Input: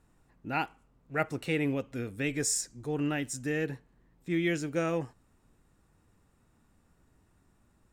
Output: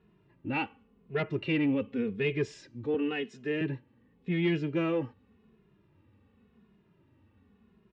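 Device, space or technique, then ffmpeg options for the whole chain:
barber-pole flanger into a guitar amplifier: -filter_complex "[0:a]asettb=1/sr,asplit=3[link_01][link_02][link_03];[link_01]atrim=end=2.944[link_04];[link_02]atrim=start=2.94:end=3.61,asetpts=PTS-STARTPTS,afade=type=in:duration=0.004:curve=qsin,afade=type=out:start_time=0.666:duration=0.004:curve=qsin,highpass=260[link_05];[link_03]atrim=start=3.606[link_06];[link_04][link_05]acrossfade=duration=0.004:curve1=hsin:curve2=qsin[link_07];[link_07][link_06]acrossfade=duration=0.004:curve1=qsin:curve2=hsin,asplit=2[link_08][link_09];[link_09]adelay=2.4,afreqshift=-0.9[link_10];[link_08][link_10]amix=inputs=2:normalize=1,asoftclip=type=tanh:threshold=-27dB,highpass=78,equalizer=frequency=95:width_type=q:width=4:gain=5,equalizer=frequency=210:width_type=q:width=4:gain=9,equalizer=frequency=410:width_type=q:width=4:gain=8,equalizer=frequency=710:width_type=q:width=4:gain=-6,equalizer=frequency=1400:width_type=q:width=4:gain=-5,equalizer=frequency=2800:width_type=q:width=4:gain=5,lowpass=frequency=3600:width=0.5412,lowpass=frequency=3600:width=1.3066,volume=4dB"

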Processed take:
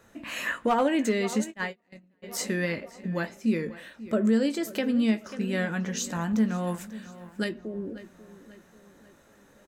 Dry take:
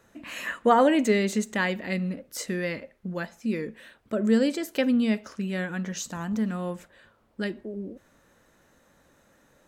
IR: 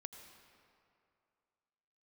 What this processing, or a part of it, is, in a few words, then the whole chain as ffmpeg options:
clipper into limiter: -filter_complex "[0:a]asplit=2[link_01][link_02];[link_02]adelay=540,lowpass=frequency=4400:poles=1,volume=-17dB,asplit=2[link_03][link_04];[link_04]adelay=540,lowpass=frequency=4400:poles=1,volume=0.49,asplit=2[link_05][link_06];[link_06]adelay=540,lowpass=frequency=4400:poles=1,volume=0.49,asplit=2[link_07][link_08];[link_08]adelay=540,lowpass=frequency=4400:poles=1,volume=0.49[link_09];[link_01][link_03][link_05][link_07][link_09]amix=inputs=5:normalize=0,asplit=3[link_10][link_11][link_12];[link_10]afade=type=out:start_time=1.5:duration=0.02[link_13];[link_11]agate=range=-37dB:threshold=-23dB:ratio=16:detection=peak,afade=type=in:start_time=1.5:duration=0.02,afade=type=out:start_time=2.22:duration=0.02[link_14];[link_12]afade=type=in:start_time=2.22:duration=0.02[link_15];[link_13][link_14][link_15]amix=inputs=3:normalize=0,asoftclip=type=hard:threshold=-12.5dB,alimiter=limit=-19dB:level=0:latency=1:release=401,asplit=2[link_16][link_17];[link_17]adelay=18,volume=-10dB[link_18];[link_16][link_18]amix=inputs=2:normalize=0,asettb=1/sr,asplit=3[link_19][link_20][link_21];[link_19]atrim=end=6.674[link_22];[link_20]atrim=start=6.67:end=7.49,asetpts=PTS-STARTPTS,afade=type=in:duration=0.004:curve=qsin,afade=type=out:start_time=0.816:duration=0.004:curve=qsin,highshelf=frequency=5500:gain=11[link_23];[link_21]atrim=start=7.486[link_24];[link_22][link_23]acrossfade=duration=0.004:curve1=hsin:curve2=qsin[link_25];[link_25][link_24]acrossfade=duration=0.004:curve1=qsin:curve2=hsin,volume=2dB"

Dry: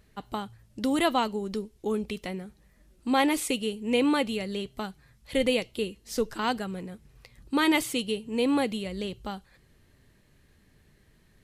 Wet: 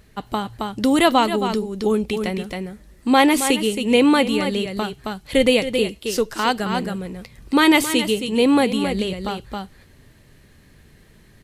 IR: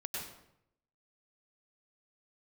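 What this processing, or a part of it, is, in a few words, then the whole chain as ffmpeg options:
ducked delay: -filter_complex "[0:a]asplit=3[link_01][link_02][link_03];[link_02]adelay=270,volume=-3dB[link_04];[link_03]apad=whole_len=516303[link_05];[link_04][link_05]sidechaincompress=threshold=-34dB:ratio=8:attack=24:release=266[link_06];[link_01][link_06]amix=inputs=2:normalize=0,asettb=1/sr,asplit=3[link_07][link_08][link_09];[link_07]atrim=end=5.984[link_10];[link_08]atrim=start=5.98:end=6.6,asetpts=PTS-STARTPTS,afade=type=in:duration=0.004:curve=qsin,afade=type=out:start_time=0.616:duration=0.004:curve=qsin,lowshelf=frequency=320:gain=-6.5[link_11];[link_09]atrim=start=6.596[link_12];[link_10][link_11]acrossfade=duration=0.004:curve1=hsin:curve2=qsin[link_13];[link_13][link_12]acrossfade=duration=0.004:curve1=qsin:curve2=hsin,volume=9dB"

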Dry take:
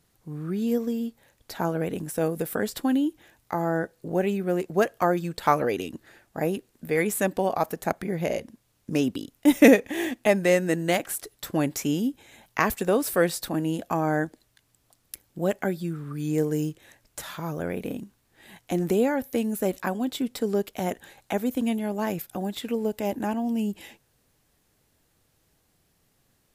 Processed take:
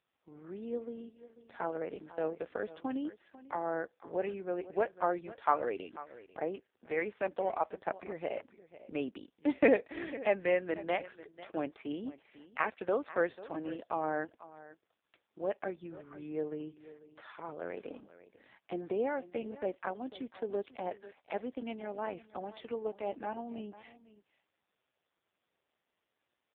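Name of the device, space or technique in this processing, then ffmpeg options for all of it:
satellite phone: -filter_complex "[0:a]asettb=1/sr,asplit=3[link_01][link_02][link_03];[link_01]atrim=end=22.194[link_04];[link_02]atrim=start=22.19:end=23,asetpts=PTS-STARTPTS,afade=type=in:duration=0.004:curve=qsin,afade=type=out:start_time=0.806:duration=0.004:curve=qsin,equalizer=frequency=1100:width=1.8:gain=5[link_05];[link_03]atrim=start=22.996[link_06];[link_04][link_05]acrossfade=duration=0.004:curve1=hsin:curve2=qsin[link_07];[link_07][link_06]acrossfade=duration=0.004:curve1=qsin:curve2=hsin,highpass=400,lowpass=3200,aecho=1:1:494:0.141,volume=-6dB" -ar 8000 -c:a libopencore_amrnb -b:a 5150

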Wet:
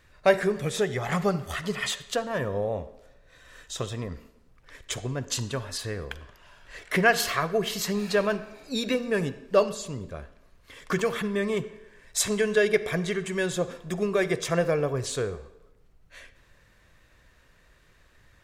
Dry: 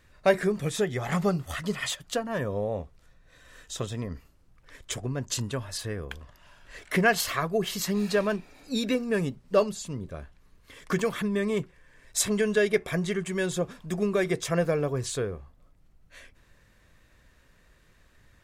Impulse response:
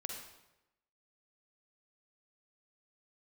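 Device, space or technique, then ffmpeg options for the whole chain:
filtered reverb send: -filter_complex "[0:a]asplit=2[link_01][link_02];[link_02]highpass=frequency=210:width=0.5412,highpass=frequency=210:width=1.3066,lowpass=7400[link_03];[1:a]atrim=start_sample=2205[link_04];[link_03][link_04]afir=irnorm=-1:irlink=0,volume=-7.5dB[link_05];[link_01][link_05]amix=inputs=2:normalize=0"

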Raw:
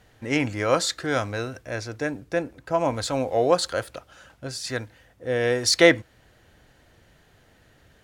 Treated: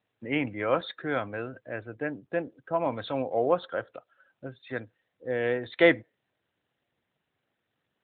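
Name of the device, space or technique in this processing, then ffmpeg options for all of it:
mobile call with aggressive noise cancelling: -filter_complex "[0:a]asplit=3[link_01][link_02][link_03];[link_01]afade=type=out:start_time=2.75:duration=0.02[link_04];[link_02]highshelf=frequency=6700:width_type=q:width=3:gain=-14,afade=type=in:start_time=2.75:duration=0.02,afade=type=out:start_time=3.22:duration=0.02[link_05];[link_03]afade=type=in:start_time=3.22:duration=0.02[link_06];[link_04][link_05][link_06]amix=inputs=3:normalize=0,highpass=130,afftdn=noise_reduction=17:noise_floor=-40,volume=-4dB" -ar 8000 -c:a libopencore_amrnb -b:a 12200

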